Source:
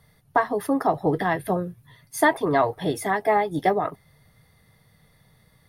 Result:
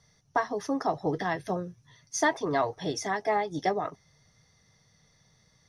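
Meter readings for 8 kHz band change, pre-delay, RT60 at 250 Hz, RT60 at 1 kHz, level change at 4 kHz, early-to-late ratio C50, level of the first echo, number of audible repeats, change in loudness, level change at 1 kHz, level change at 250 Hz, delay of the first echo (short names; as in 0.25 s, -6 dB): +1.0 dB, none, none, none, -1.0 dB, none, none, none, -6.5 dB, -6.5 dB, -6.5 dB, none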